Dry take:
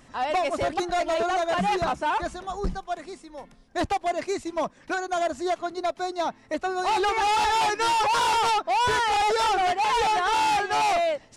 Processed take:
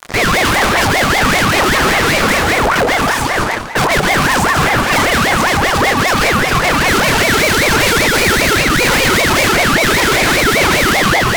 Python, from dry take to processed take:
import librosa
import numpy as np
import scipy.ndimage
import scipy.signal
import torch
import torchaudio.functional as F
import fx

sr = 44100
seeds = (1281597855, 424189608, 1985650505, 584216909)

p1 = x + fx.echo_alternate(x, sr, ms=130, hz=1100.0, feedback_pct=55, wet_db=-6.5, dry=0)
p2 = fx.chorus_voices(p1, sr, voices=2, hz=0.5, base_ms=28, depth_ms=1.8, mix_pct=40)
p3 = fx.fuzz(p2, sr, gain_db=49.0, gate_db=-50.0)
p4 = fx.rev_gated(p3, sr, seeds[0], gate_ms=220, shape='rising', drr_db=9.0)
p5 = fx.ring_lfo(p4, sr, carrier_hz=960.0, swing_pct=55, hz=5.1)
y = p5 * 10.0 ** (4.5 / 20.0)